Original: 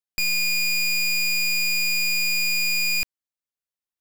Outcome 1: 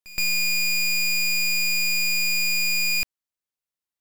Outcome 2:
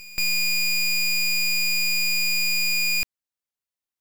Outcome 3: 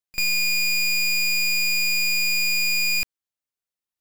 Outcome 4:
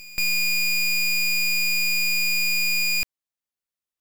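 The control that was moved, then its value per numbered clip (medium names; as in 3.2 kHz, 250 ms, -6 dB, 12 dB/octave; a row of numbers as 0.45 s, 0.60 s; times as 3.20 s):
pre-echo, time: 122 ms, 301 ms, 41 ms, 205 ms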